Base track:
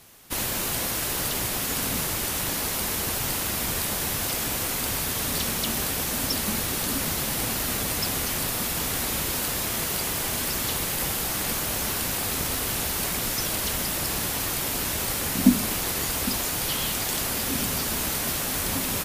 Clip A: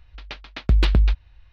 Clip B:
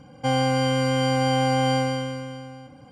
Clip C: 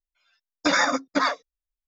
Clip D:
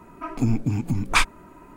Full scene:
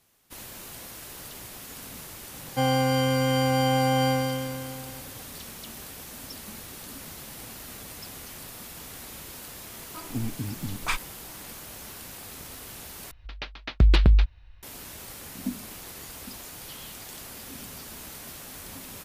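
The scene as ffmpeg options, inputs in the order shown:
ffmpeg -i bed.wav -i cue0.wav -i cue1.wav -i cue2.wav -i cue3.wav -filter_complex "[0:a]volume=-14.5dB,asplit=2[link_01][link_02];[link_01]atrim=end=13.114[link_03];[1:a]atrim=end=1.52,asetpts=PTS-STARTPTS,volume=-0.5dB[link_04];[link_02]atrim=start=14.626[link_05];[2:a]atrim=end=2.91,asetpts=PTS-STARTPTS,volume=-1.5dB,afade=type=in:duration=0.004:curve=hsin,afade=type=out:start_time=2.906:duration=0.004:curve=hsin,adelay=2330[link_06];[4:a]atrim=end=1.76,asetpts=PTS-STARTPTS,volume=-9.5dB,afade=type=in:duration=0.004:curve=hsin,afade=type=out:start_time=1.756:duration=0.004:curve=hsin,adelay=9730[link_07];[link_03][link_04]acrossfade=duration=0.004:curve1=hsin:curve2=hsin[link_08];[link_08][link_05]acrossfade=duration=0.004:curve1=hsin:curve2=hsin[link_09];[link_09][link_06][link_07]amix=inputs=3:normalize=0" out.wav

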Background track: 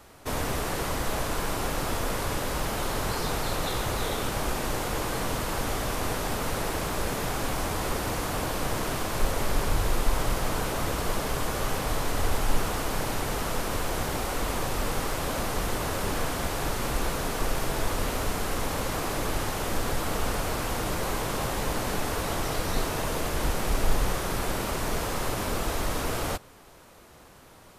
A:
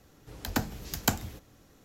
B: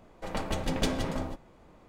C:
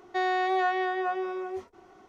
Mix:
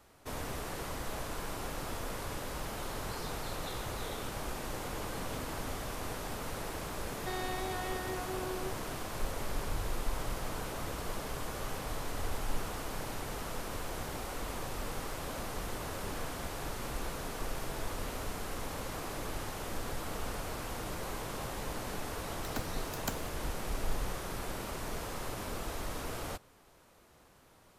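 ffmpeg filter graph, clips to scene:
ffmpeg -i bed.wav -i cue0.wav -i cue1.wav -i cue2.wav -filter_complex "[0:a]volume=-10dB[link_01];[2:a]acrossover=split=3100[link_02][link_03];[link_03]acompressor=threshold=-53dB:ratio=4:attack=1:release=60[link_04];[link_02][link_04]amix=inputs=2:normalize=0[link_05];[3:a]acrossover=split=260|3000[link_06][link_07][link_08];[link_07]acompressor=threshold=-37dB:ratio=6:attack=3.2:release=140:knee=2.83:detection=peak[link_09];[link_06][link_09][link_08]amix=inputs=3:normalize=0[link_10];[1:a]acrusher=bits=5:mix=0:aa=0.5[link_11];[link_05]atrim=end=1.88,asetpts=PTS-STARTPTS,volume=-15dB,afade=type=in:duration=0.004:curve=hsin,afade=type=out:start_time=1.876:duration=0.004:curve=hsin,adelay=4500[link_12];[link_10]atrim=end=2.08,asetpts=PTS-STARTPTS,volume=-3dB,afade=type=in:duration=0.004:curve=hsin,afade=type=out:start_time=2.076:duration=0.004:curve=hsin,adelay=7120[link_13];[link_11]atrim=end=1.84,asetpts=PTS-STARTPTS,volume=-11.5dB,afade=type=in:duration=0.004:curve=hsin,afade=type=out:start_time=1.836:duration=0.004:curve=hsin,adelay=22000[link_14];[link_01][link_12][link_13][link_14]amix=inputs=4:normalize=0" out.wav

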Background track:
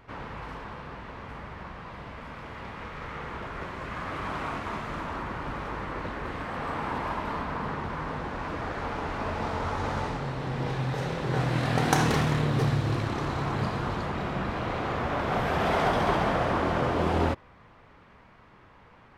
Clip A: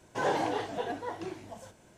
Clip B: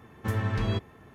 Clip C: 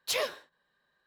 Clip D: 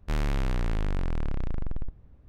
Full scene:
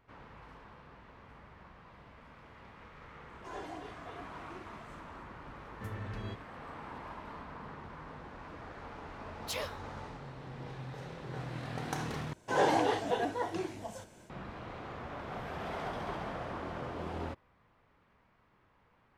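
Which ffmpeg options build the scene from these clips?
ffmpeg -i bed.wav -i cue0.wav -i cue1.wav -i cue2.wav -filter_complex "[1:a]asplit=2[link_01][link_02];[0:a]volume=-14dB[link_03];[link_01]aecho=1:1:2.9:0.93[link_04];[link_02]dynaudnorm=framelen=160:gausssize=3:maxgain=5dB[link_05];[link_03]asplit=2[link_06][link_07];[link_06]atrim=end=12.334[link_08];[link_05]atrim=end=1.97,asetpts=PTS-STARTPTS,volume=-2.5dB[link_09];[link_07]atrim=start=14.296[link_10];[link_04]atrim=end=1.97,asetpts=PTS-STARTPTS,volume=-17.5dB,afade=type=in:duration=0.004:curve=hsin,afade=type=out:start_time=1.966:duration=0.004:curve=hsin,adelay=145089S[link_11];[2:a]atrim=end=1.14,asetpts=PTS-STARTPTS,volume=-13.5dB,afade=type=in:duration=0.004:curve=hsin,afade=type=out:start_time=1.136:duration=0.004:curve=hsin,adelay=5560[link_12];[3:a]atrim=end=1.06,asetpts=PTS-STARTPTS,volume=-8dB,afade=type=in:duration=0.004:curve=hsin,afade=type=out:start_time=1.056:duration=0.004:curve=hsin,adelay=9400[link_13];[link_08][link_09]acrossfade=duration=0.004:curve1=hsin:curve2=hsin[link_14];[link_14][link_10]acrossfade=duration=0.004:curve1=hsin:curve2=hsin[link_15];[link_15][link_11][link_12][link_13]amix=inputs=4:normalize=0" out.wav

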